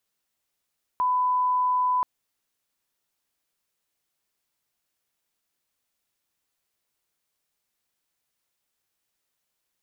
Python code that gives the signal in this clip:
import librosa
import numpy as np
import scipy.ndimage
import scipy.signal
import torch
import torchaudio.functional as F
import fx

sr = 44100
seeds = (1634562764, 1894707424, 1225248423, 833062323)

y = fx.lineup_tone(sr, length_s=1.03, level_db=-20.0)